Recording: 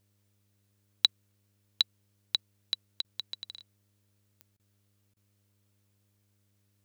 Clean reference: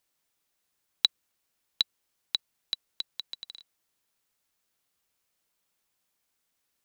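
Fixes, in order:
click removal
hum removal 101.3 Hz, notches 6
repair the gap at 0:03.02/0:04.57/0:05.14, 24 ms

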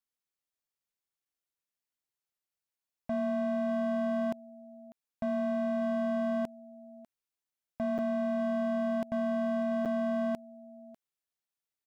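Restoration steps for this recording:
clipped peaks rebuilt −27 dBFS
repair the gap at 0:01.25/0:07.98/0:09.85, 7.7 ms
echo removal 596 ms −21 dB

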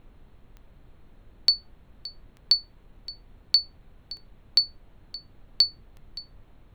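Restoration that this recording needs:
click removal
noise reduction from a noise print 27 dB

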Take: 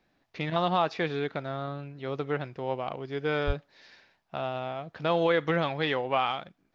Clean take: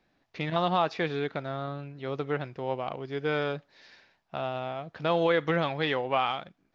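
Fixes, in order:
0:03.46–0:03.58: high-pass filter 140 Hz 24 dB per octave

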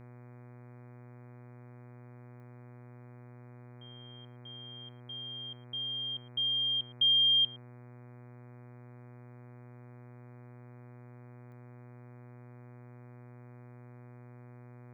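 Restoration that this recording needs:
click removal
hum removal 122.2 Hz, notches 20
echo removal 112 ms −23.5 dB

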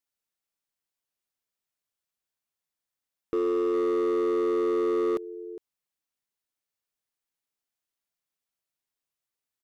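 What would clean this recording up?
clipped peaks rebuilt −22.5 dBFS
echo removal 409 ms −16 dB

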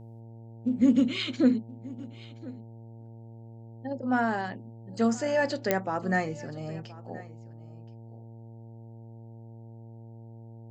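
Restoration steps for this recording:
click removal
hum removal 114.2 Hz, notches 8
echo removal 1,024 ms −20 dB

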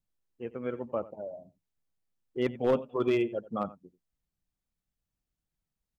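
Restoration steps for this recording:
clipped peaks rebuilt −18.5 dBFS
echo removal 89 ms −18.5 dB

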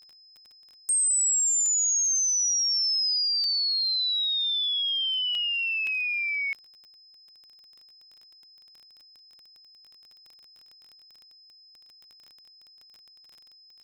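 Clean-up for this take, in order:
click removal
notch filter 5,100 Hz, Q 30
repair the gap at 0:00.89/0:01.66/0:03.44/0:05.35/0:05.87/0:09.19, 1.6 ms

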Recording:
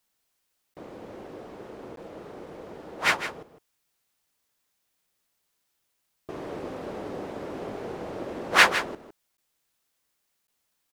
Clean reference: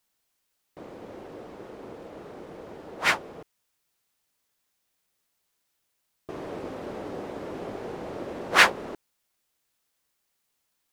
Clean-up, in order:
repair the gap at 0:00.74/0:01.96/0:09.37/0:10.47, 12 ms
echo removal 157 ms −11 dB

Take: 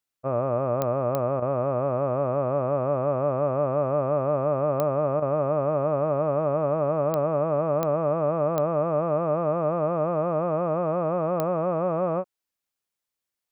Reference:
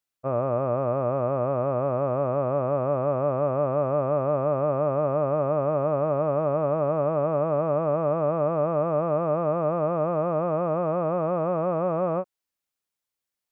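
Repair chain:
click removal
repair the gap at 0:01.40/0:05.20, 20 ms

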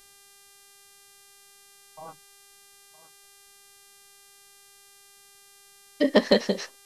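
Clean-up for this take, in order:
clipped peaks rebuilt −7.5 dBFS
hum removal 398.9 Hz, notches 31
echo removal 964 ms −16.5 dB

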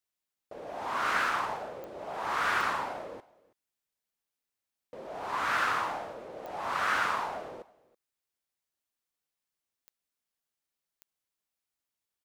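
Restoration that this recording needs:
click removal
echo removal 326 ms −23 dB

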